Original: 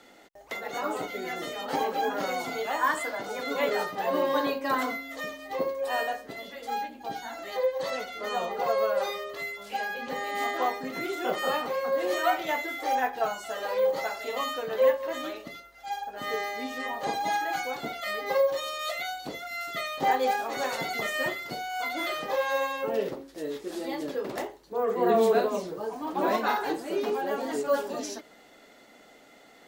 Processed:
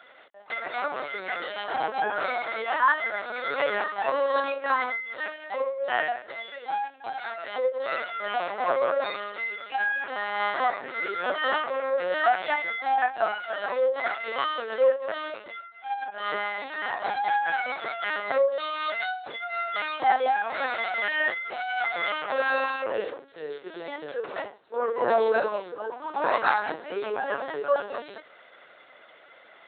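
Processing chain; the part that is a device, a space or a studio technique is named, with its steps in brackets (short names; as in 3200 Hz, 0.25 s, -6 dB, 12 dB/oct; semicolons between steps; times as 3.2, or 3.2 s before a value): talking toy (LPC vocoder at 8 kHz pitch kept; HPF 480 Hz 12 dB/oct; bell 1500 Hz +6.5 dB 0.42 oct); gain +3 dB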